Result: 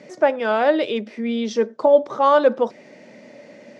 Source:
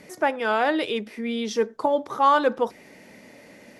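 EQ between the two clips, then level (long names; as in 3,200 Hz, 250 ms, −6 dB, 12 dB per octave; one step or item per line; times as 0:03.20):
loudspeaker in its box 140–6,900 Hz, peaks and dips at 140 Hz +6 dB, 230 Hz +5 dB, 350 Hz +3 dB, 580 Hz +10 dB
0.0 dB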